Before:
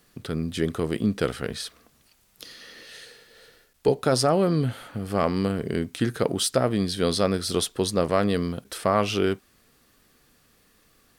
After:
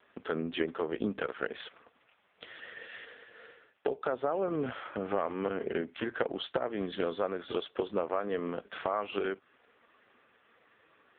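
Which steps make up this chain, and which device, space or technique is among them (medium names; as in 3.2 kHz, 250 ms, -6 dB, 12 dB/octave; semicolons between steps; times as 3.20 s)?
voicemail (band-pass 420–2700 Hz; compression 12:1, threshold -33 dBFS, peak gain reduction 16.5 dB; trim +7 dB; AMR-NB 4.75 kbps 8 kHz)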